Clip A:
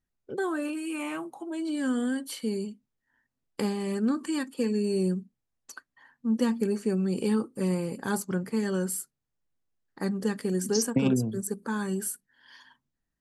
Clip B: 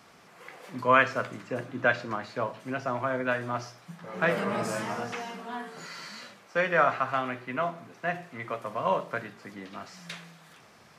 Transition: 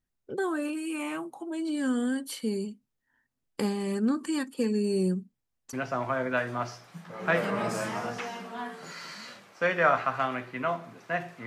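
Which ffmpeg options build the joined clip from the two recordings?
-filter_complex "[0:a]apad=whole_dur=11.46,atrim=end=11.46,atrim=end=5.732[s0];[1:a]atrim=start=2.668:end=8.4[s1];[s0][s1]acrossfade=d=0.004:c1=hsin:c2=hsin"

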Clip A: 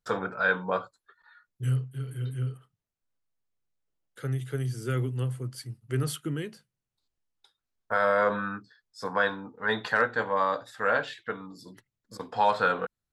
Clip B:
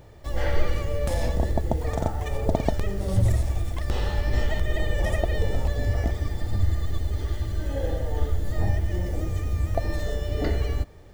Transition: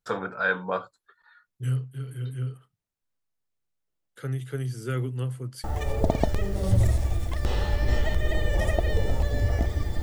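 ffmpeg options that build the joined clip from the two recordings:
-filter_complex "[0:a]apad=whole_dur=10.02,atrim=end=10.02,atrim=end=5.642[s0];[1:a]atrim=start=2.088:end=6.47[s1];[s0][s1]acrossfade=d=0.004:c1=hsin:c2=hsin"

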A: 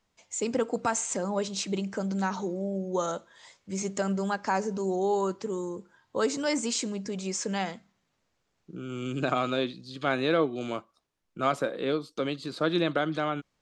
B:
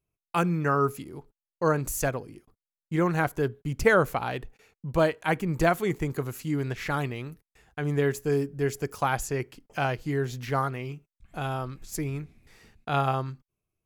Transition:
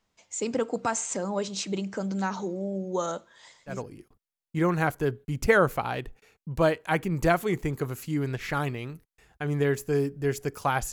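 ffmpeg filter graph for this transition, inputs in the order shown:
-filter_complex "[0:a]asettb=1/sr,asplit=3[s0][s1][s2];[s0]atrim=end=3.344[s3];[s1]atrim=start=3.34:end=3.82,asetpts=PTS-STARTPTS,afade=t=in:d=0.004:c=qsin,afade=t=out:st=0.476:d=0.004:c=qsin,aecho=1:1:116:0.335,atrim=end_sample=21168[s4];[s2]atrim=start=3.816[s5];[s3][s4]acrossfade=d=0.004:c1=hsin:c2=qsin[s6];[s6][s5]acrossfade=d=0.004:c1=qsin:c2=hsin,apad=whole_dur=10.92,atrim=end=10.92,atrim=end=3.82,asetpts=PTS-STARTPTS[s7];[1:a]atrim=start=2.03:end=9.29,asetpts=PTS-STARTPTS[s8];[s7][s8]acrossfade=d=0.16:c1=tri:c2=tri"

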